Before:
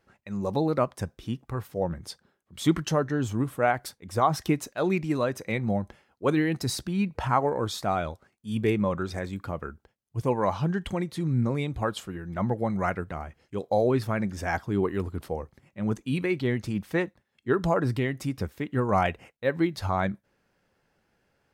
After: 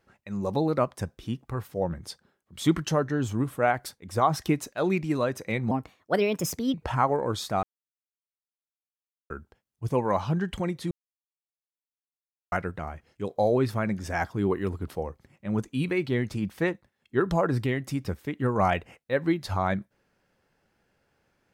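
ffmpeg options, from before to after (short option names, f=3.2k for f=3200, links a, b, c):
-filter_complex "[0:a]asplit=7[a][b][c][d][e][f][g];[a]atrim=end=5.714[h];[b]atrim=start=5.71:end=7.07,asetpts=PTS-STARTPTS,asetrate=58212,aresample=44100,atrim=end_sample=45436,asetpts=PTS-STARTPTS[i];[c]atrim=start=7.066:end=7.96,asetpts=PTS-STARTPTS,afade=t=out:st=0.89:d=0.004:c=hsin[j];[d]atrim=start=7.96:end=9.63,asetpts=PTS-STARTPTS,volume=0[k];[e]atrim=start=9.63:end=11.24,asetpts=PTS-STARTPTS,afade=t=in:d=0.004:c=hsin,afade=t=out:st=1.606:d=0.004:c=hsin[l];[f]atrim=start=11.24:end=12.85,asetpts=PTS-STARTPTS,volume=0[m];[g]atrim=start=12.85,asetpts=PTS-STARTPTS,afade=t=in:d=0.004:c=hsin[n];[h][i]acrossfade=d=0.004:c1=hsin:c2=hsin[o];[j][k][l][m][n]concat=n=5:v=0:a=1[p];[o][p]acrossfade=d=0.004:c1=hsin:c2=hsin"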